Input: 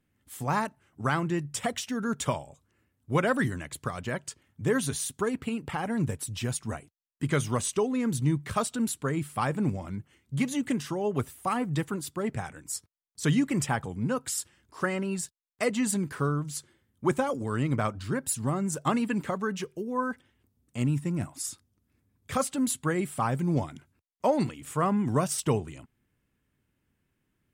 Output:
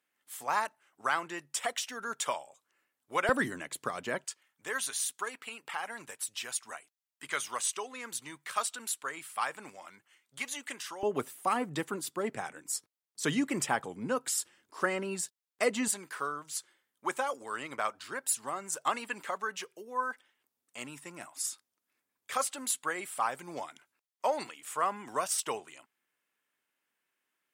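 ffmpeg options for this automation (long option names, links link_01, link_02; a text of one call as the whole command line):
ffmpeg -i in.wav -af "asetnsamples=nb_out_samples=441:pad=0,asendcmd='3.29 highpass f 310;4.25 highpass f 1000;11.03 highpass f 320;15.88 highpass f 740',highpass=700" out.wav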